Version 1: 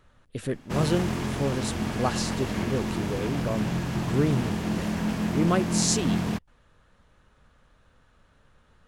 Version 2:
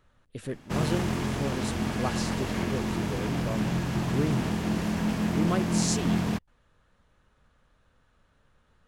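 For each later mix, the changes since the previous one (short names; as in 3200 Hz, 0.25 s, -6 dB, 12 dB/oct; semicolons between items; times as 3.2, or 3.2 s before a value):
speech -5.0 dB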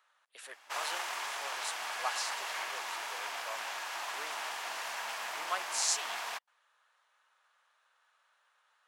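master: add HPF 790 Hz 24 dB/oct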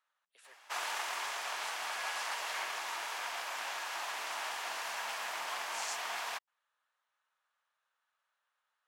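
speech -12.0 dB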